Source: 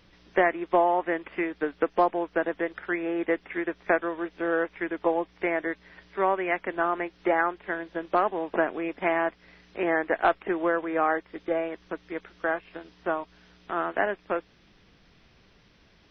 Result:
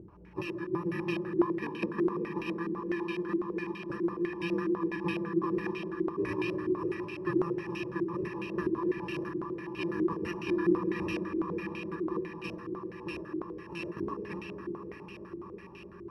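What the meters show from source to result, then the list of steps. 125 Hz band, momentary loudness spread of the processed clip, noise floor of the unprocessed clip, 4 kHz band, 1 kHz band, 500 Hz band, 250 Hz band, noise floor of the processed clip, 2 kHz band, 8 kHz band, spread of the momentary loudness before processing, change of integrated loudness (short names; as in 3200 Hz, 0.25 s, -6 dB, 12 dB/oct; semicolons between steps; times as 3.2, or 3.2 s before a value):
+8.0 dB, 10 LU, -60 dBFS, -0.5 dB, -13.0 dB, -7.0 dB, +0.5 dB, -48 dBFS, -10.5 dB, n/a, 9 LU, -6.0 dB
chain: FFT order left unsorted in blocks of 64 samples; vibrato 7.6 Hz 40 cents; notch comb 260 Hz; random-step tremolo; in parallel at +1.5 dB: level quantiser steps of 20 dB; on the sum: tilt -1.5 dB/oct; swelling echo 0.105 s, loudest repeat 5, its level -16 dB; digital reverb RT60 4.6 s, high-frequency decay 0.6×, pre-delay 10 ms, DRR 1 dB; upward compressor, threshold -34 dBFS; HPF 75 Hz; stepped low-pass 12 Hz 350–2700 Hz; gain -5 dB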